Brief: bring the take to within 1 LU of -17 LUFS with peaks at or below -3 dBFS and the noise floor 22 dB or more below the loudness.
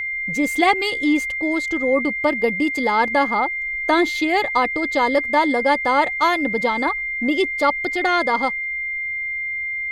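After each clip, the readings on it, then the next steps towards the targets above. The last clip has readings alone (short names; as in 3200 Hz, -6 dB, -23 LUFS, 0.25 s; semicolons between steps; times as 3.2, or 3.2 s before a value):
steady tone 2100 Hz; tone level -23 dBFS; loudness -19.5 LUFS; peak -4.5 dBFS; loudness target -17.0 LUFS
-> notch 2100 Hz, Q 30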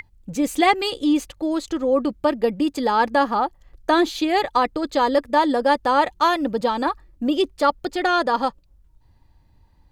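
steady tone none; loudness -21.0 LUFS; peak -5.5 dBFS; loudness target -17.0 LUFS
-> gain +4 dB; limiter -3 dBFS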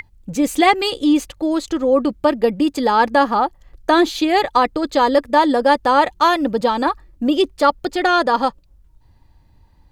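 loudness -17.0 LUFS; peak -3.0 dBFS; noise floor -54 dBFS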